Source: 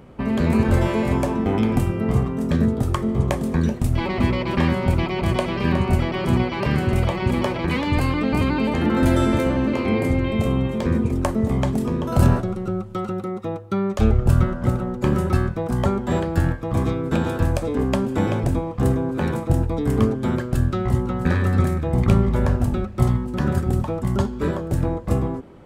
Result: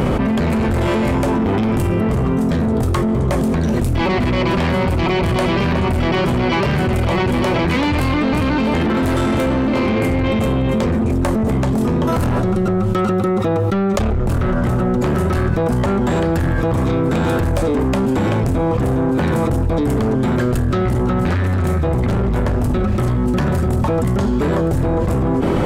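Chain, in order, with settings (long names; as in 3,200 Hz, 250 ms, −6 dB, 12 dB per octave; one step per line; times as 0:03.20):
soft clipping −21.5 dBFS, distortion −8 dB
envelope flattener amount 100%
level +6 dB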